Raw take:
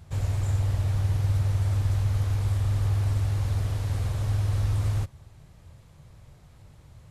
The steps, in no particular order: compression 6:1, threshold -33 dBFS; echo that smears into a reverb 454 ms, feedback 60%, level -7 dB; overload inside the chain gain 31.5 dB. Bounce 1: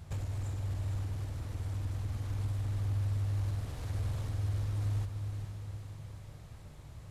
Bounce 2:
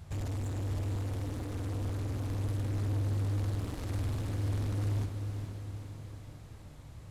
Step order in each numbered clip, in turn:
compression > overload inside the chain > echo that smears into a reverb; overload inside the chain > compression > echo that smears into a reverb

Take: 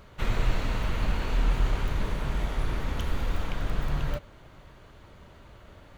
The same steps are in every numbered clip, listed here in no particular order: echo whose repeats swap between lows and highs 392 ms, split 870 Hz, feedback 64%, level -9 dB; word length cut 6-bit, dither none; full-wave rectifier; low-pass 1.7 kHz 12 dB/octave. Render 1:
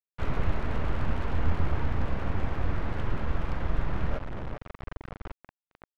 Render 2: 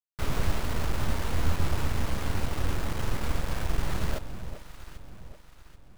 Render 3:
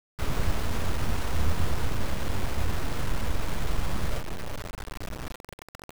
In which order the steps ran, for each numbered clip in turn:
echo whose repeats swap between lows and highs > word length cut > low-pass > full-wave rectifier; low-pass > word length cut > echo whose repeats swap between lows and highs > full-wave rectifier; low-pass > full-wave rectifier > echo whose repeats swap between lows and highs > word length cut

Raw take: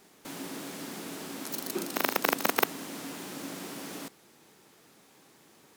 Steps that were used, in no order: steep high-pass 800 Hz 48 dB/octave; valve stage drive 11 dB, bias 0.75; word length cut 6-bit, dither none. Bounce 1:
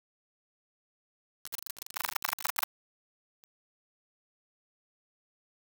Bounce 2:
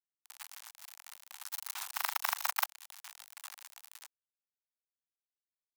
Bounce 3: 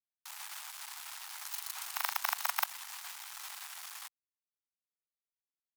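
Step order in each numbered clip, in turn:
valve stage > steep high-pass > word length cut; valve stage > word length cut > steep high-pass; word length cut > valve stage > steep high-pass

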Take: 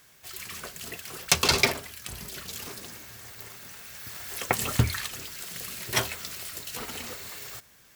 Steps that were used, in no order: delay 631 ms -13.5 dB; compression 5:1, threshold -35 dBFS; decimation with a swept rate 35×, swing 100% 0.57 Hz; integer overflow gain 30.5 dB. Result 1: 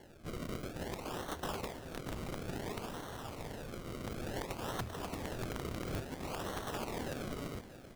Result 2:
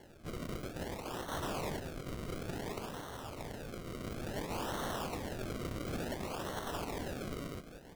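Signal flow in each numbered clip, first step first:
decimation with a swept rate > compression > delay > integer overflow; integer overflow > compression > delay > decimation with a swept rate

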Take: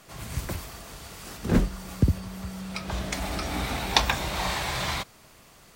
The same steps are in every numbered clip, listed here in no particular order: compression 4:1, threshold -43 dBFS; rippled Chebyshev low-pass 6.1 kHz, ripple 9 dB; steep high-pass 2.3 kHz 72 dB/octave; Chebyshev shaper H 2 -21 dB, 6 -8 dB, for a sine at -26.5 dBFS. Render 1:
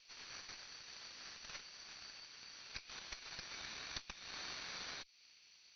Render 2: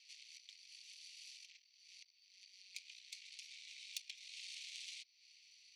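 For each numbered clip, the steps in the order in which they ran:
steep high-pass > compression > Chebyshev shaper > rippled Chebyshev low-pass; compression > rippled Chebyshev low-pass > Chebyshev shaper > steep high-pass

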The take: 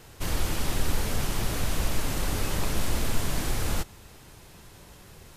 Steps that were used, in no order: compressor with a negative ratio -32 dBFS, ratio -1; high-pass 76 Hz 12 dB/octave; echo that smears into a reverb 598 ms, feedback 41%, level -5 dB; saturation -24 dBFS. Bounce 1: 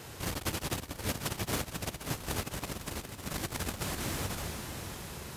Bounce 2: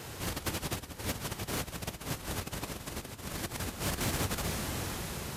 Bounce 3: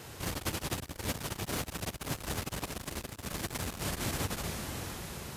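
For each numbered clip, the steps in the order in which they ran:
saturation > echo that smears into a reverb > compressor with a negative ratio > high-pass; echo that smears into a reverb > compressor with a negative ratio > high-pass > saturation; echo that smears into a reverb > saturation > compressor with a negative ratio > high-pass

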